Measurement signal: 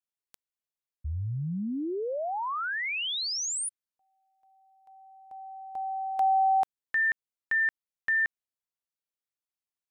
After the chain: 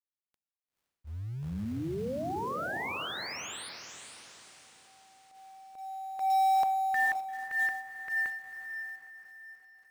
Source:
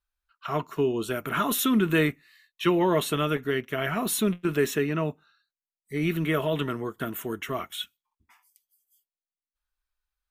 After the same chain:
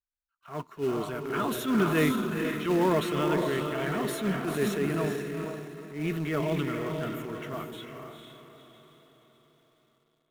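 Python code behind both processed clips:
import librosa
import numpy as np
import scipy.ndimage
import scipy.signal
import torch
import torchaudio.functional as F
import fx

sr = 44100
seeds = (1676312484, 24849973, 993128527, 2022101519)

p1 = fx.high_shelf(x, sr, hz=4200.0, db=-10.5)
p2 = fx.echo_diffused(p1, sr, ms=465, feedback_pct=48, wet_db=-3.5)
p3 = fx.transient(p2, sr, attack_db=-8, sustain_db=4)
p4 = fx.quant_companded(p3, sr, bits=4)
p5 = p3 + (p4 * 10.0 ** (-7.0 / 20.0))
p6 = fx.upward_expand(p5, sr, threshold_db=-35.0, expansion=1.5)
y = p6 * 10.0 ** (-4.0 / 20.0)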